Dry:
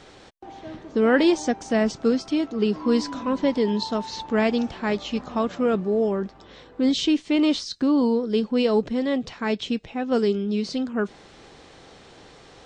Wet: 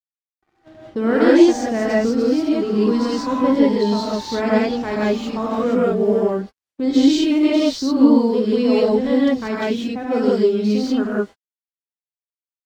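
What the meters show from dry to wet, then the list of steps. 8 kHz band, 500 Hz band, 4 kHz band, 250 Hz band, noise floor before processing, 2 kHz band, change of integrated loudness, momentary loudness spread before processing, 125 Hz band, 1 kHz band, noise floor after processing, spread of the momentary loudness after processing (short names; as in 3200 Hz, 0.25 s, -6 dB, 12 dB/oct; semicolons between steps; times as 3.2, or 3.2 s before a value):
+3.0 dB, +5.5 dB, +1.5 dB, +6.5 dB, -49 dBFS, +3.0 dB, +5.5 dB, 8 LU, n/a, +4.5 dB, under -85 dBFS, 9 LU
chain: gate -34 dBFS, range -19 dB; dynamic EQ 2900 Hz, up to -5 dB, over -45 dBFS, Q 2.9; harmonic-percussive split percussive -5 dB; in parallel at -1 dB: compressor, threshold -32 dBFS, peak gain reduction 16 dB; on the sum: crossover distortion -52 dBFS; non-linear reverb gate 0.21 s rising, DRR -6.5 dB; gain -2.5 dB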